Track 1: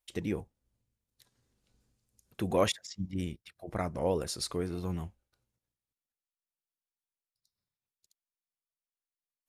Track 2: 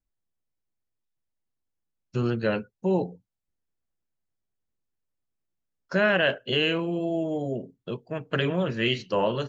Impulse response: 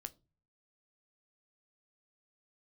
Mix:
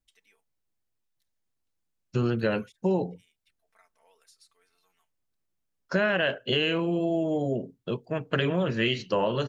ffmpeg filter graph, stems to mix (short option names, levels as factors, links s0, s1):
-filter_complex "[0:a]highpass=1500,aecho=1:1:4.5:0.75,acompressor=threshold=0.0126:ratio=5,volume=0.119[s0];[1:a]volume=1.33[s1];[s0][s1]amix=inputs=2:normalize=0,acompressor=threshold=0.0891:ratio=6"